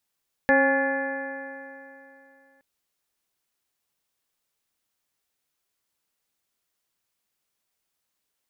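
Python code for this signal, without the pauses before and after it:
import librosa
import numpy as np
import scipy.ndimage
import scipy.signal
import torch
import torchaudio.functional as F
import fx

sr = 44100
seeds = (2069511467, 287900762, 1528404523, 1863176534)

y = fx.additive_stiff(sr, length_s=2.12, hz=269.0, level_db=-22.5, upper_db=(3.5, -1.0, -12.0, -11.5, 4.0, -10.5, -18), decay_s=2.88, stiffness=0.004)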